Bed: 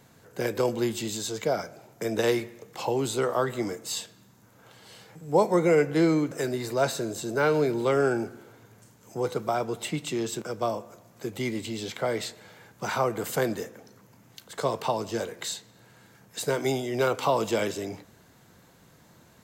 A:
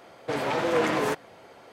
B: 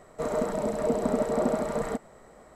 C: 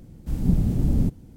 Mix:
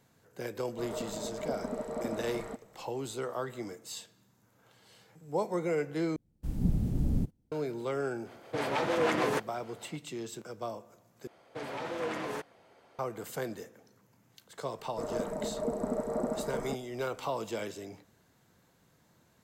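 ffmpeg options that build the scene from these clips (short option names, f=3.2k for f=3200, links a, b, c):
-filter_complex "[2:a]asplit=2[a][b];[1:a]asplit=2[c][d];[0:a]volume=-10dB[e];[3:a]agate=range=-18dB:threshold=-37dB:ratio=16:release=100:detection=peak[f];[c]acrossover=split=430[g][h];[g]aeval=exprs='val(0)*(1-0.5/2+0.5/2*cos(2*PI*6.6*n/s))':c=same[i];[h]aeval=exprs='val(0)*(1-0.5/2-0.5/2*cos(2*PI*6.6*n/s))':c=same[j];[i][j]amix=inputs=2:normalize=0[k];[b]equalizer=f=3.1k:w=1.1:g=-12.5[l];[e]asplit=3[m][n][o];[m]atrim=end=6.164[p];[f]atrim=end=1.36,asetpts=PTS-STARTPTS,volume=-8dB[q];[n]atrim=start=7.516:end=11.274[r];[d]atrim=end=1.72,asetpts=PTS-STARTPTS,volume=-11dB[s];[o]atrim=start=12.986[t];[a]atrim=end=2.55,asetpts=PTS-STARTPTS,volume=-10.5dB,afade=t=in:d=0.004:c=hsin,afade=t=out:st=2.546:d=0.004:c=hsin,adelay=590[u];[k]atrim=end=1.72,asetpts=PTS-STARTPTS,volume=-1.5dB,afade=t=in:d=0.004:c=hsin,afade=t=out:st=1.716:d=0.004:c=hsin,adelay=8250[v];[l]atrim=end=2.55,asetpts=PTS-STARTPTS,volume=-6.5dB,afade=t=in:d=0.004:c=hsin,afade=t=out:st=2.546:d=0.004:c=hsin,adelay=14780[w];[p][q]acrossfade=d=0.004:c1=hsin:c2=hsin[x];[x][r]acrossfade=d=0.004:c1=hsin:c2=hsin[y];[y][s]acrossfade=d=0.004:c1=hsin:c2=hsin[z];[z][t]acrossfade=d=0.004:c1=hsin:c2=hsin[aa];[aa][u][v][w]amix=inputs=4:normalize=0"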